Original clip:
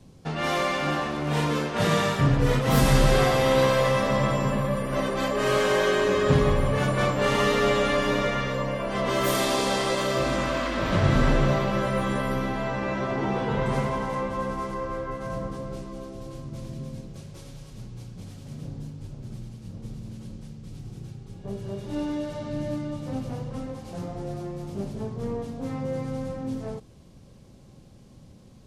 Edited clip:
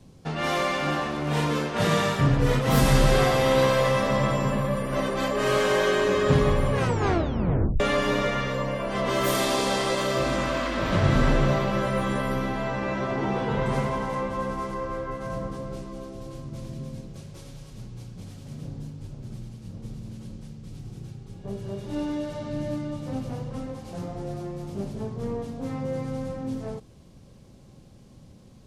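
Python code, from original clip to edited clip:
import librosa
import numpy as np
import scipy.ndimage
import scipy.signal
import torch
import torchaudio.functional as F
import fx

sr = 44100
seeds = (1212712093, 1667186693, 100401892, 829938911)

y = fx.edit(x, sr, fx.tape_stop(start_s=6.72, length_s=1.08), tone=tone)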